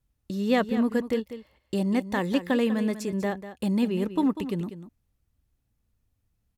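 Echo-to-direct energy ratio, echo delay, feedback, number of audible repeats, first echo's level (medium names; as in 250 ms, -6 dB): -12.0 dB, 195 ms, no regular repeats, 1, -12.0 dB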